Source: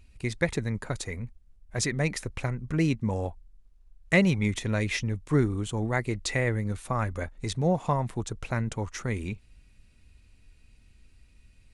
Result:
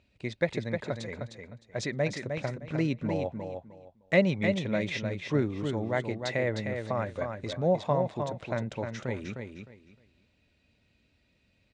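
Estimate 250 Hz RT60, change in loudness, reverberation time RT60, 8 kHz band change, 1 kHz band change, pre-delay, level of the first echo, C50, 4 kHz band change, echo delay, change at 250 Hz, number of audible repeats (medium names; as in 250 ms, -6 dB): no reverb, -2.0 dB, no reverb, -11.5 dB, -2.0 dB, no reverb, -6.0 dB, no reverb, -3.0 dB, 307 ms, -2.5 dB, 3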